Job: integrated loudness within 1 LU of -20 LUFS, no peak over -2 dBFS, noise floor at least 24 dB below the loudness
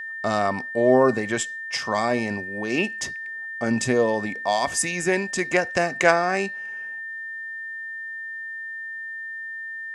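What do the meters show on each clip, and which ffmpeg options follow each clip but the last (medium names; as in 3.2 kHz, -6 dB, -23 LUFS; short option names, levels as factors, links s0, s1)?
steady tone 1.8 kHz; tone level -31 dBFS; loudness -24.5 LUFS; peak level -2.0 dBFS; loudness target -20.0 LUFS
-> -af "bandreject=f=1800:w=30"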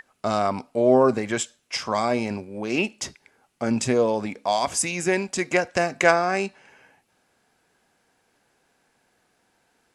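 steady tone not found; loudness -23.5 LUFS; peak level -3.0 dBFS; loudness target -20.0 LUFS
-> -af "volume=1.5,alimiter=limit=0.794:level=0:latency=1"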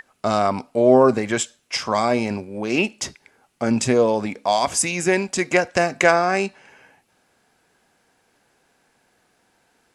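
loudness -20.5 LUFS; peak level -2.0 dBFS; noise floor -65 dBFS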